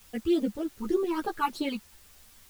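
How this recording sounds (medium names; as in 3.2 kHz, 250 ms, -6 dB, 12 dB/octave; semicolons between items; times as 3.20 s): phasing stages 12, 3.3 Hz, lowest notch 560–2300 Hz; a quantiser's noise floor 10-bit, dither triangular; a shimmering, thickened sound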